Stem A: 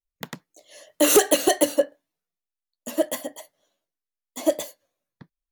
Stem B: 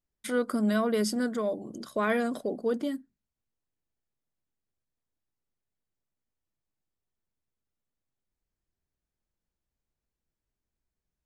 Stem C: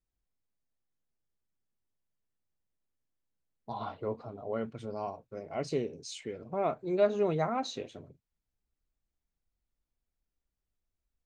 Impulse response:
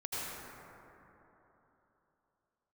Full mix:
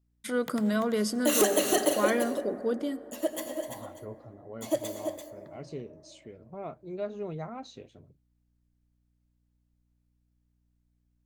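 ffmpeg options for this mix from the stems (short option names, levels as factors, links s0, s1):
-filter_complex "[0:a]adelay=250,volume=0.355,asplit=3[s0][s1][s2];[s1]volume=0.376[s3];[s2]volume=0.531[s4];[1:a]volume=0.841,asplit=2[s5][s6];[s6]volume=0.0708[s7];[2:a]lowshelf=f=190:g=10,aeval=exprs='val(0)+0.000891*(sin(2*PI*60*n/s)+sin(2*PI*2*60*n/s)/2+sin(2*PI*3*60*n/s)/3+sin(2*PI*4*60*n/s)/4+sin(2*PI*5*60*n/s)/5)':c=same,volume=0.316[s8];[3:a]atrim=start_sample=2205[s9];[s3][s7]amix=inputs=2:normalize=0[s10];[s10][s9]afir=irnorm=-1:irlink=0[s11];[s4]aecho=0:1:339:1[s12];[s0][s5][s8][s11][s12]amix=inputs=5:normalize=0"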